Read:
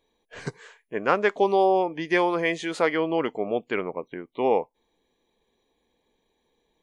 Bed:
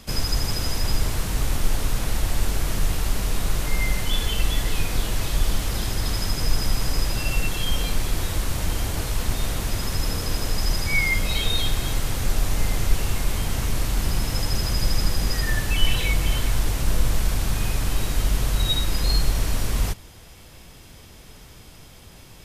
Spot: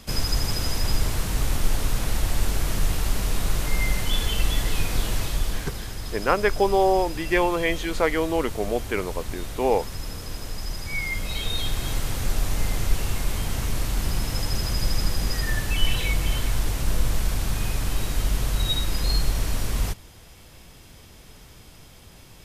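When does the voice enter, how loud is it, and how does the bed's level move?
5.20 s, +0.5 dB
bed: 5.15 s -0.5 dB
5.85 s -8.5 dB
10.75 s -8.5 dB
11.94 s -2 dB

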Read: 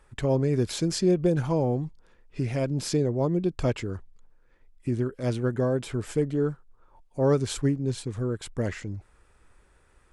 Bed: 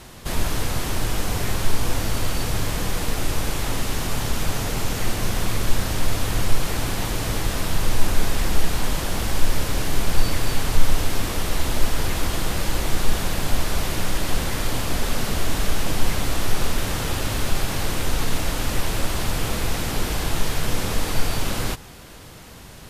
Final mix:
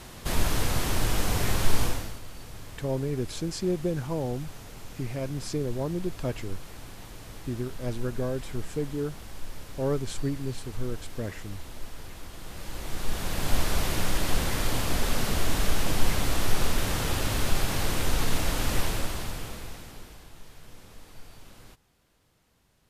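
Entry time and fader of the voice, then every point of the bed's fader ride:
2.60 s, -5.5 dB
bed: 1.83 s -2 dB
2.21 s -19 dB
12.34 s -19 dB
13.56 s -3 dB
18.81 s -3 dB
20.30 s -25.5 dB

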